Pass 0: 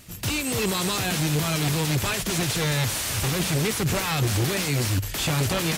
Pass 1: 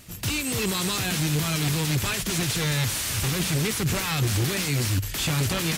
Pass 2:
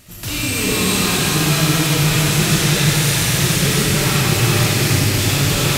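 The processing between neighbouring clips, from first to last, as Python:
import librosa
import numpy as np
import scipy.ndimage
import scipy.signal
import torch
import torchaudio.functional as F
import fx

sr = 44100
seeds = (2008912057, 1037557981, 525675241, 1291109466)

y1 = fx.dynamic_eq(x, sr, hz=650.0, q=0.87, threshold_db=-43.0, ratio=4.0, max_db=-5)
y2 = y1 + 10.0 ** (-6.0 / 20.0) * np.pad(y1, (int(335 * sr / 1000.0), 0))[:len(y1)]
y2 = fx.rev_freeverb(y2, sr, rt60_s=3.7, hf_ratio=0.95, predelay_ms=15, drr_db=-7.5)
y2 = F.gain(torch.from_numpy(y2), 1.0).numpy()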